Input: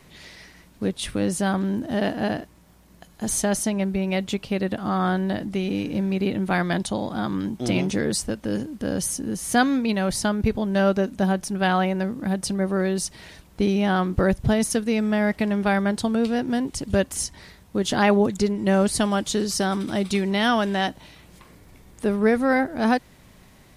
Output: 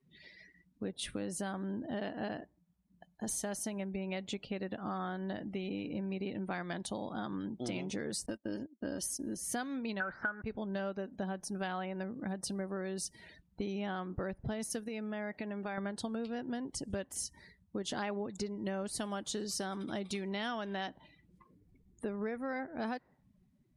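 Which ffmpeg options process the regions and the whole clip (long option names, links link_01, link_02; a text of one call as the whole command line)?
ffmpeg -i in.wav -filter_complex "[0:a]asettb=1/sr,asplit=3[link_01][link_02][link_03];[link_01]atrim=end=8.264[link_04];[link_02]atrim=start=8.26:end=9.37,asetpts=PTS-STARTPTS,afade=type=in:duration=0.004:curve=qsin,afade=type=out:start_time=1.106:duration=0.004:curve=qsin,agate=range=-24dB:threshold=-32dB:ratio=16:release=100:detection=peak,equalizer=frequency=5000:width=7.6:gain=3,aecho=1:1:3.2:0.5,atrim=end_sample=48951[link_05];[link_03]atrim=start=9.366[link_06];[link_04][link_05]acrossfade=duration=0.004:curve1=hsin:curve2=qsin[link_07];[link_07][link_06]acrossfade=duration=0.004:curve1=qsin:curve2=hsin,asettb=1/sr,asplit=3[link_08][link_09][link_10];[link_08]atrim=end=10.004[link_11];[link_09]atrim=start=10:end=10.42,asetpts=PTS-STARTPTS,afade=type=in:duration=0.004:curve=qsin,afade=type=out:start_time=0.416:duration=0.004:curve=qsin,aeval=exprs='val(0)+0.5*0.0355*sgn(val(0))':channel_layout=same,lowpass=frequency=1500:width_type=q:width=11,lowshelf=frequency=200:gain=-8.5[link_12];[link_10]atrim=start=10.416[link_13];[link_11][link_12]acrossfade=duration=0.004:curve1=hsin:curve2=qsin[link_14];[link_14][link_13]acrossfade=duration=0.004:curve1=qsin:curve2=hsin,asettb=1/sr,asplit=3[link_15][link_16][link_17];[link_15]atrim=end=14.884[link_18];[link_16]atrim=start=14.88:end=15.78,asetpts=PTS-STARTPTS,afade=type=in:duration=0.004:curve=qsin,afade=type=out:start_time=0.896:duration=0.004:curve=qsin,lowshelf=frequency=100:gain=-12,acompressor=threshold=-26dB:ratio=3:attack=3.2:release=140:knee=1:detection=peak[link_19];[link_17]atrim=start=15.776[link_20];[link_18][link_19]acrossfade=duration=0.004:curve1=hsin:curve2=qsin[link_21];[link_21][link_20]acrossfade=duration=0.004:curve1=qsin:curve2=hsin,lowshelf=frequency=140:gain=-8.5,afftdn=noise_reduction=27:noise_floor=-44,acompressor=threshold=-27dB:ratio=6,volume=-7.5dB" out.wav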